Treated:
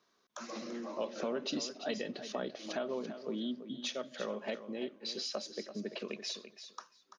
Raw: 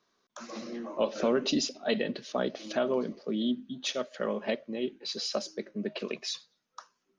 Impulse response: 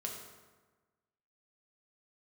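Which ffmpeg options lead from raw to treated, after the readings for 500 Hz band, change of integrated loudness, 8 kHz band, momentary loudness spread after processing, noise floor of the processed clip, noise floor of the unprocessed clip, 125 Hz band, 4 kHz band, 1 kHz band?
-7.5 dB, -7.0 dB, -5.5 dB, 7 LU, -74 dBFS, -79 dBFS, -8.0 dB, -5.5 dB, -6.0 dB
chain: -af "lowshelf=f=100:g=-8.5,acompressor=threshold=0.01:ratio=2,aecho=1:1:338|676:0.282|0.0451"

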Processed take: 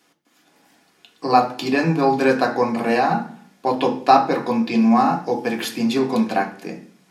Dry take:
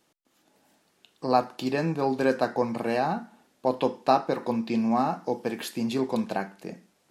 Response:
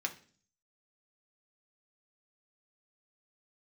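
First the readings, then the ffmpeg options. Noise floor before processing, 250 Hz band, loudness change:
-69 dBFS, +8.5 dB, +8.0 dB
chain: -filter_complex "[1:a]atrim=start_sample=2205,asetrate=41454,aresample=44100[s0];[0:a][s0]afir=irnorm=-1:irlink=0,volume=2.24"

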